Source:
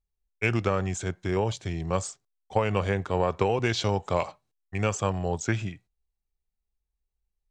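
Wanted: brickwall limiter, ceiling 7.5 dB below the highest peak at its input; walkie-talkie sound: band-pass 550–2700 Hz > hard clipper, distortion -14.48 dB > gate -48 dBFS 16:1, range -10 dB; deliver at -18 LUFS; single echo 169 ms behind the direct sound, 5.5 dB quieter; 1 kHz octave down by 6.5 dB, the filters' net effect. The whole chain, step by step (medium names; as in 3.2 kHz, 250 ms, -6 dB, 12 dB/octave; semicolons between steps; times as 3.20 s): peaking EQ 1 kHz -7.5 dB; peak limiter -17.5 dBFS; band-pass 550–2700 Hz; delay 169 ms -5.5 dB; hard clipper -29 dBFS; gate -48 dBFS 16:1, range -10 dB; trim +20 dB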